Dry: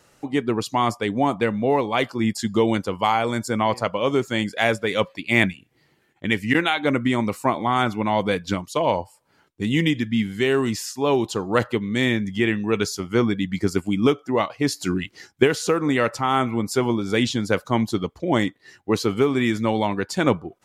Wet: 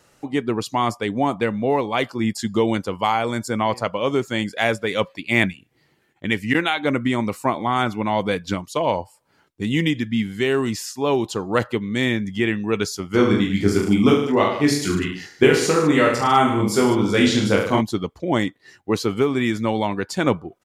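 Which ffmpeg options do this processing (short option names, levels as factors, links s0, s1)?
-filter_complex "[0:a]asplit=3[s0][s1][s2];[s0]afade=t=out:st=13.13:d=0.02[s3];[s1]aecho=1:1:20|44|72.8|107.4|148.8|198.6:0.794|0.631|0.501|0.398|0.316|0.251,afade=t=in:st=13.13:d=0.02,afade=t=out:st=17.8:d=0.02[s4];[s2]afade=t=in:st=17.8:d=0.02[s5];[s3][s4][s5]amix=inputs=3:normalize=0"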